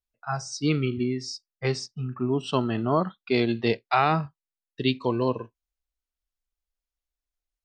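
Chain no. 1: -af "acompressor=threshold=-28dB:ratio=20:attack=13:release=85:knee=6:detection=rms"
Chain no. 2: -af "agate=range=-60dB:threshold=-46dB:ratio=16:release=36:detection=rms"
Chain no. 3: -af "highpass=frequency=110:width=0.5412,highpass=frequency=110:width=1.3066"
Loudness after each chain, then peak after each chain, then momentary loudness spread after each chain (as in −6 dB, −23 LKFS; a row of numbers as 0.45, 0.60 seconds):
−34.5, −27.0, −27.0 LKFS; −16.5, −8.5, −9.0 dBFS; 5, 10, 10 LU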